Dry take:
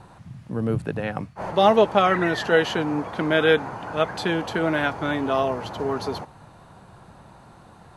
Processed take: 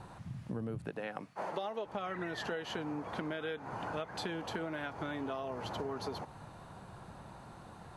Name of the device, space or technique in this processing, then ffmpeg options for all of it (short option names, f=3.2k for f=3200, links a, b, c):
serial compression, leveller first: -filter_complex "[0:a]asettb=1/sr,asplit=3[a][b][c];[a]atrim=end=0.904[d];[b]atrim=start=0.9:end=1.86,asetpts=PTS-STARTPTS,afade=t=in:d=0.004:c=qsin,afade=t=out:st=0.956:d=0.004:c=qsin,highpass=270[e];[c]atrim=start=1.856[f];[d][e]acrossfade=d=0.004:c1=hsin:c2=qsin[g];[g][f]acrossfade=d=0.004:c1=qsin:c2=hsin,acompressor=threshold=-22dB:ratio=2.5,acompressor=threshold=-33dB:ratio=6,volume=-3dB"